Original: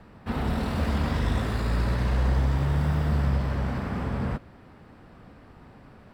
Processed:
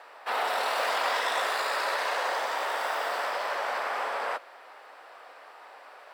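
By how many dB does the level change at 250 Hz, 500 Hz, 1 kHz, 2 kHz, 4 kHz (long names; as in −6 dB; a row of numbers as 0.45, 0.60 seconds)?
−23.5, +3.0, +8.0, +8.0, +8.0 decibels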